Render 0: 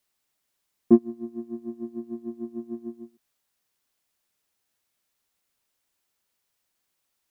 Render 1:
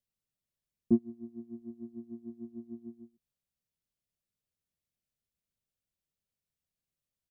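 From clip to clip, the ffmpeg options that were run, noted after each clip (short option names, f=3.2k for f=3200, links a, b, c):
-af "firequalizer=gain_entry='entry(160,0);entry(300,-12);entry(570,-10);entry(840,-20);entry(2700,-15)':delay=0.05:min_phase=1,volume=-1dB"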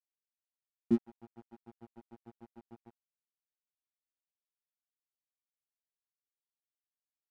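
-af "aeval=exprs='sgn(val(0))*max(abs(val(0))-0.00841,0)':c=same,volume=-2dB"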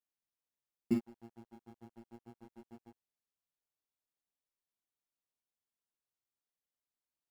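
-filter_complex "[0:a]flanger=delay=19.5:depth=7.5:speed=0.3,asplit=2[a][b];[b]acrusher=samples=18:mix=1:aa=0.000001,volume=-9dB[c];[a][c]amix=inputs=2:normalize=0"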